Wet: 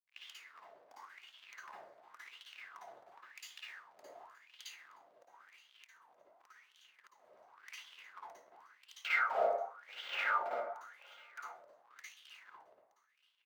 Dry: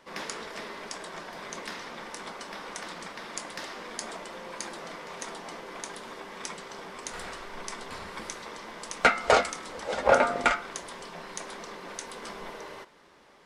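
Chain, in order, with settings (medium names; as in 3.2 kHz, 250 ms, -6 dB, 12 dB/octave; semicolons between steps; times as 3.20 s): high-pass 380 Hz 6 dB/octave; crossover distortion -36 dBFS; careless resampling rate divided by 2×, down none, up zero stuff; treble shelf 11 kHz +5 dB; level rider gain up to 9 dB; delay 922 ms -18 dB; reverberation RT60 0.70 s, pre-delay 48 ms, DRR -6 dB; 4.97–7.57 s: compression 6:1, threshold -36 dBFS, peak gain reduction 14 dB; hard clipper -13 dBFS, distortion -7 dB; wah-wah 0.92 Hz 590–3200 Hz, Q 6.6; trim -2 dB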